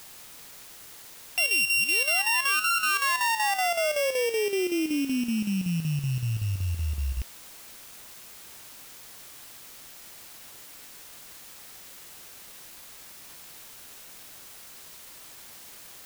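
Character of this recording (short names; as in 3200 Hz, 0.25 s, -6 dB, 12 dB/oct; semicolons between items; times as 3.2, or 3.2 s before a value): a buzz of ramps at a fixed pitch in blocks of 16 samples; chopped level 5.3 Hz, depth 60%, duty 75%; a quantiser's noise floor 8-bit, dither triangular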